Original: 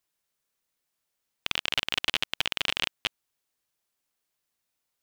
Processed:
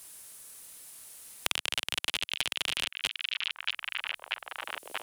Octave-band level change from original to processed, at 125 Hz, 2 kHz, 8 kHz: -5.5 dB, -1.0 dB, +5.0 dB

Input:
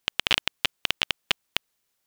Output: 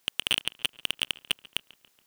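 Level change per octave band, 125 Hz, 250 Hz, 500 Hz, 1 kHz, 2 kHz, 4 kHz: -5.5 dB, -4.5 dB, -6.5 dB, -9.0 dB, -5.5 dB, -2.0 dB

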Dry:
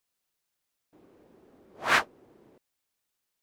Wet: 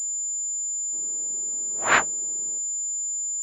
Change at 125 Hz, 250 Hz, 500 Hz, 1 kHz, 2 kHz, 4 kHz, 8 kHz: +3.5 dB, +4.0 dB, +4.5 dB, +4.5 dB, +4.0 dB, 0.0 dB, +27.5 dB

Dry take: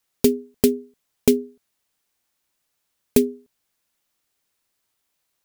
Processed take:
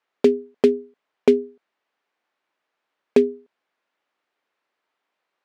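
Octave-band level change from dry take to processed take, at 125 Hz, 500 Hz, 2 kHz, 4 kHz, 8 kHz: -9.0 dB, +3.5 dB, +2.0 dB, -5.5 dB, under -15 dB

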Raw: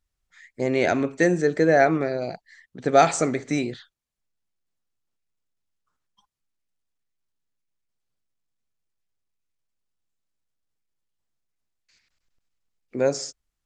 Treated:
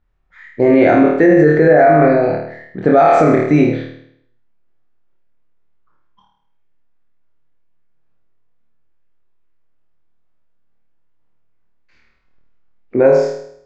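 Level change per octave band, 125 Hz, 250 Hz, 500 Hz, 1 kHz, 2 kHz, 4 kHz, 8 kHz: +11.5 dB, +12.5 dB, +11.0 dB, +9.5 dB, +7.0 dB, no reading, under -10 dB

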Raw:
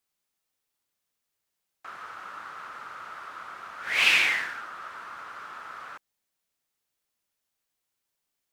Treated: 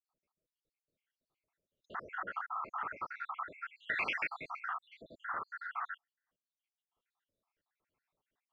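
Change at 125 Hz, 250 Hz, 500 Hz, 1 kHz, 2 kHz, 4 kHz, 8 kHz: no reading, -4.0 dB, -4.0 dB, -2.0 dB, -11.5 dB, -22.5 dB, under -30 dB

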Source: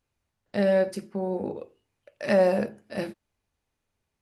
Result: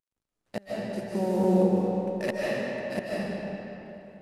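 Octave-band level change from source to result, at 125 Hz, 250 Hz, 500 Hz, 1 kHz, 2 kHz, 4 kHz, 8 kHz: +4.0 dB, +3.0 dB, -3.0 dB, 0.0 dB, -1.0 dB, 0.0 dB, no reading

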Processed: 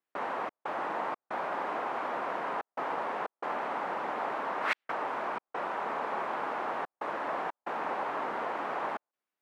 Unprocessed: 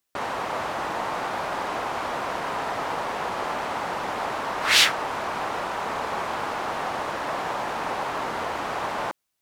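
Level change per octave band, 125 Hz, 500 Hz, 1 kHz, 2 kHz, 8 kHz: -14.0 dB, -5.5 dB, -5.5 dB, -9.0 dB, under -25 dB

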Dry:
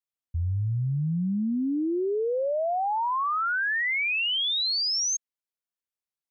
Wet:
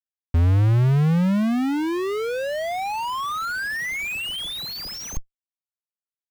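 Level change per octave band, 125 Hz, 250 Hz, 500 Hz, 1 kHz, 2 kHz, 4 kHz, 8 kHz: +9.5 dB, +5.5 dB, +1.0 dB, 0.0 dB, -0.5 dB, -4.0 dB, no reading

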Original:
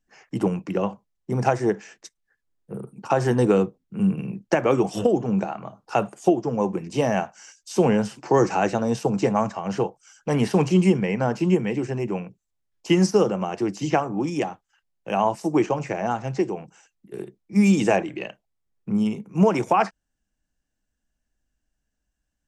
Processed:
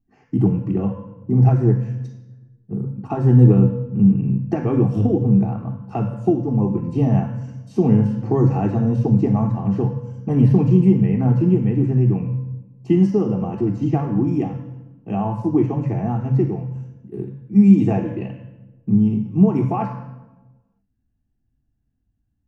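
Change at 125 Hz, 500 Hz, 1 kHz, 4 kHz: +11.5 dB, -2.0 dB, -5.0 dB, under -10 dB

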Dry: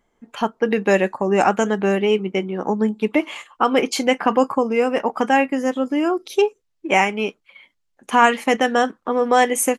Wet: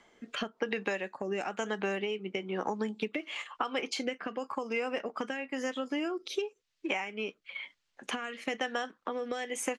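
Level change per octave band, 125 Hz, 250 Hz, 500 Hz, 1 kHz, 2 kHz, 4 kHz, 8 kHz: no reading, -16.0 dB, -16.0 dB, -19.0 dB, -13.0 dB, -10.0 dB, -15.0 dB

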